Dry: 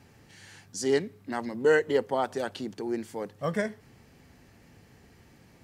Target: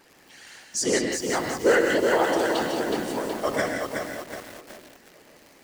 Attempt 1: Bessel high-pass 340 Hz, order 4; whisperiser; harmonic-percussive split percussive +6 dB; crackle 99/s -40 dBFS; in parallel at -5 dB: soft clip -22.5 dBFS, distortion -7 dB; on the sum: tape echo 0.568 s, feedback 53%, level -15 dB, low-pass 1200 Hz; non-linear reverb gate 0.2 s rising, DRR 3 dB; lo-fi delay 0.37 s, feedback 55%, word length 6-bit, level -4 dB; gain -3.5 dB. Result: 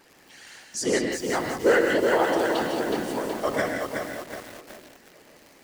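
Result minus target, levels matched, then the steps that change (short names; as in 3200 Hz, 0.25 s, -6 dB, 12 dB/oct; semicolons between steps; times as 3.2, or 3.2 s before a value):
8000 Hz band -3.5 dB
add after Bessel high-pass: dynamic EQ 6700 Hz, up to +5 dB, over -52 dBFS, Q 0.85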